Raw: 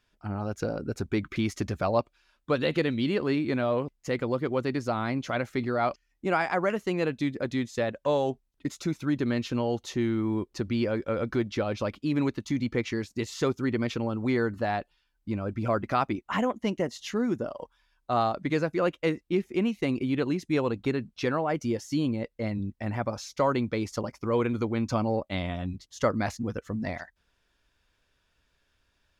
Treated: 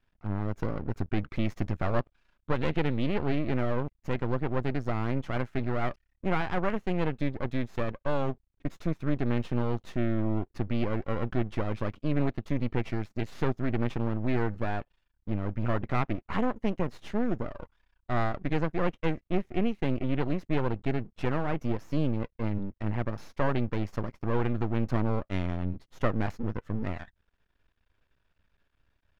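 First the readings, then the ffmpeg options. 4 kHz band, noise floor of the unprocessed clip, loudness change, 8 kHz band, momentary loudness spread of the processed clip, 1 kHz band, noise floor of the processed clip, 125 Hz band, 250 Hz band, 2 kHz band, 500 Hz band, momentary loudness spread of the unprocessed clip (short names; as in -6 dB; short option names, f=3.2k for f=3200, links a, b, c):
-7.0 dB, -74 dBFS, -2.5 dB, under -15 dB, 5 LU, -3.5 dB, -75 dBFS, +2.5 dB, -2.5 dB, -3.5 dB, -4.5 dB, 7 LU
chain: -af "aeval=exprs='max(val(0),0)':c=same,bass=f=250:g=5,treble=f=4k:g=-14"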